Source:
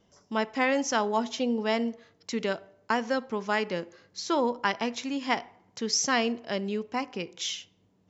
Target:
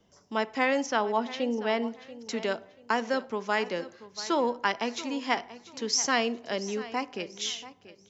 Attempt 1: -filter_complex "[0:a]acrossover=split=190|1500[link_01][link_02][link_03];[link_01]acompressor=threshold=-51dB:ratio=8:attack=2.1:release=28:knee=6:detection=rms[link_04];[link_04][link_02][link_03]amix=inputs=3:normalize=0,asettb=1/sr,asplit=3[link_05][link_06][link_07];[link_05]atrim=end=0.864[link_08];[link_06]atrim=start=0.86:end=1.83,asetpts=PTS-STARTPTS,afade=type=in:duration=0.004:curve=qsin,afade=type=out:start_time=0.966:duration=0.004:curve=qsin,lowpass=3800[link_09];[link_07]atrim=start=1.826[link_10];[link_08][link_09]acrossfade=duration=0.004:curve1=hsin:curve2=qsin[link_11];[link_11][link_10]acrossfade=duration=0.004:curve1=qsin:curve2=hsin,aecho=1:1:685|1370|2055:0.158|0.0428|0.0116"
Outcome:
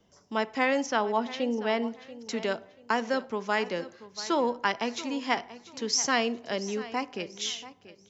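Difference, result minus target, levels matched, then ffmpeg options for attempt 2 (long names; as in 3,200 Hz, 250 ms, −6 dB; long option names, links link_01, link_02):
downward compressor: peak gain reduction −7.5 dB
-filter_complex "[0:a]acrossover=split=190|1500[link_01][link_02][link_03];[link_01]acompressor=threshold=-59.5dB:ratio=8:attack=2.1:release=28:knee=6:detection=rms[link_04];[link_04][link_02][link_03]amix=inputs=3:normalize=0,asettb=1/sr,asplit=3[link_05][link_06][link_07];[link_05]atrim=end=0.864[link_08];[link_06]atrim=start=0.86:end=1.83,asetpts=PTS-STARTPTS,afade=type=in:duration=0.004:curve=qsin,afade=type=out:start_time=0.966:duration=0.004:curve=qsin,lowpass=3800[link_09];[link_07]atrim=start=1.826[link_10];[link_08][link_09]acrossfade=duration=0.004:curve1=hsin:curve2=qsin[link_11];[link_11][link_10]acrossfade=duration=0.004:curve1=qsin:curve2=hsin,aecho=1:1:685|1370|2055:0.158|0.0428|0.0116"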